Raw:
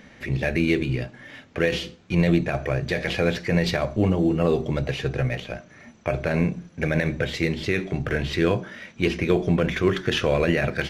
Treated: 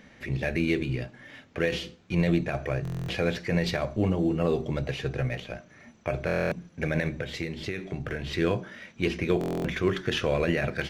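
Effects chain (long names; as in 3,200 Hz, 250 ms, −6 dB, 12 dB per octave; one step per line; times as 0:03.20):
0:07.08–0:08.27: downward compressor, threshold −24 dBFS, peak gain reduction 7 dB
buffer that repeats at 0:02.83/0:06.26/0:09.39, samples 1,024, times 10
level −4.5 dB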